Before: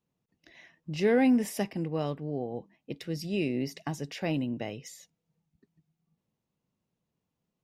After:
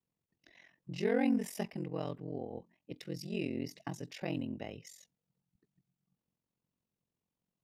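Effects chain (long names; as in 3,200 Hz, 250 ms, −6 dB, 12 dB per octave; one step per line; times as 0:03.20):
ring modulation 22 Hz
level −4 dB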